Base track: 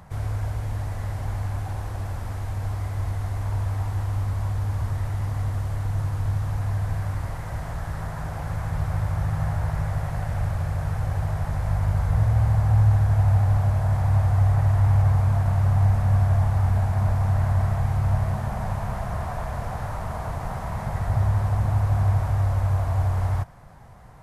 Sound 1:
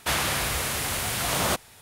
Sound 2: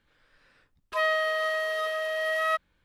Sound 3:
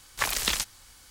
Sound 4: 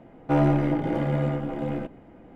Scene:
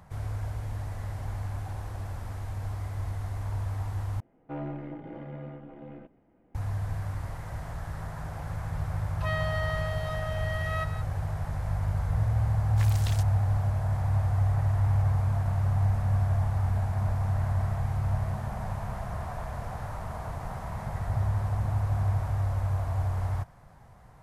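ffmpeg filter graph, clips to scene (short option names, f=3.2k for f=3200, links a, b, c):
-filter_complex "[0:a]volume=-6dB[a];[4:a]lowpass=3k[b];[2:a]asplit=2[c][d];[d]adelay=170,highpass=300,lowpass=3.4k,asoftclip=type=hard:threshold=-25dB,volume=-9dB[e];[c][e]amix=inputs=2:normalize=0[f];[a]asplit=2[g][h];[g]atrim=end=4.204[i];[b]atrim=end=2.35,asetpts=PTS-STARTPTS,volume=-15.5dB[j];[h]atrim=start=6.546[k];[f]atrim=end=2.84,asetpts=PTS-STARTPTS,volume=-7.5dB,afade=t=in:d=0.004:c=hsin,afade=t=out:st=2.836:d=0.004:c=hsin,adelay=8280[l];[3:a]atrim=end=1.1,asetpts=PTS-STARTPTS,volume=-14.5dB,afade=t=in:d=0.004:c=hsin,afade=t=out:st=1.096:d=0.004:c=hsin,adelay=12590[m];[i][j]acrossfade=d=0.004:c1=hsin:c2=hsin[n];[n][k]acrossfade=d=0.004:c1=hsin:c2=hsin[o];[o][l][m]amix=inputs=3:normalize=0"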